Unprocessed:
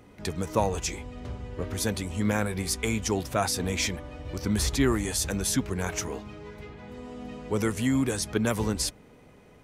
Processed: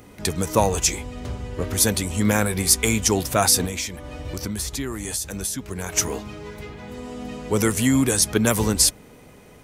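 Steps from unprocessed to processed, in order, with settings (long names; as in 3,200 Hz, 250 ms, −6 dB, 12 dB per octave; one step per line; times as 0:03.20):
high-shelf EQ 6,000 Hz +11.5 dB
0:03.65–0:05.97: downward compressor 6 to 1, threshold −32 dBFS, peak gain reduction 14 dB
level +6 dB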